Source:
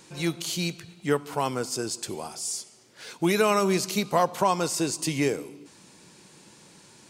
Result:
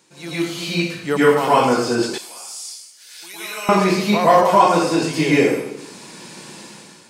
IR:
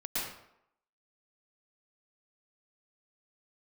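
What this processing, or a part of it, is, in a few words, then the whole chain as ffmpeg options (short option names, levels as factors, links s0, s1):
far laptop microphone: -filter_complex "[1:a]atrim=start_sample=2205[s0];[0:a][s0]afir=irnorm=-1:irlink=0,highpass=f=200:p=1,dynaudnorm=f=300:g=5:m=5.01,asettb=1/sr,asplit=3[s1][s2][s3];[s1]atrim=end=2.184[s4];[s2]atrim=start=2.18:end=3.69,asetpts=PTS-STARTPTS,afade=t=in:d=0.004:c=qsin,afade=t=out:st=1.506:d=0.004:c=qsin,aderivative[s5];[s3]atrim=start=3.686[s6];[s4][s5]acrossfade=d=0.004:c1=hsin:c2=qsin[s7];[s7][s6]acrossfade=d=0.004:c1=qsin:c2=hsin,acrossover=split=3900[s8][s9];[s9]acompressor=threshold=0.0178:ratio=4:attack=1:release=60[s10];[s8][s10]amix=inputs=2:normalize=0"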